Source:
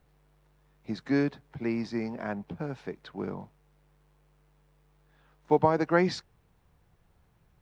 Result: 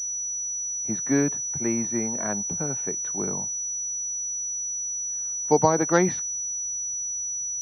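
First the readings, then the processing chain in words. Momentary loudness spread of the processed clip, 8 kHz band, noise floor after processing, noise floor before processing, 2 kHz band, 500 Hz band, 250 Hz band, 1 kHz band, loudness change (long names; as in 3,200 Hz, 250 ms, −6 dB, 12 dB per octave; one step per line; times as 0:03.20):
6 LU, can't be measured, −30 dBFS, −67 dBFS, +2.5 dB, +3.5 dB, +3.5 dB, +3.5 dB, +5.0 dB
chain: switching amplifier with a slow clock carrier 5,900 Hz
level +3.5 dB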